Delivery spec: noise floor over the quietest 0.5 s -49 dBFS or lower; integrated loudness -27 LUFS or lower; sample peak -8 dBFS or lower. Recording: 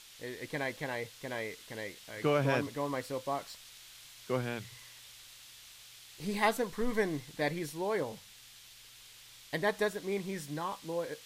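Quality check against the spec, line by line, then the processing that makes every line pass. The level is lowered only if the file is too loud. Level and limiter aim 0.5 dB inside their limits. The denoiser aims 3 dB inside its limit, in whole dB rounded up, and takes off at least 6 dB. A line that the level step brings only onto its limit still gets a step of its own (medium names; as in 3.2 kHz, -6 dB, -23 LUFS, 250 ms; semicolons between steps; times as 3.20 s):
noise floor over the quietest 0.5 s -55 dBFS: pass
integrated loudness -35.0 LUFS: pass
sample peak -16.5 dBFS: pass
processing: none needed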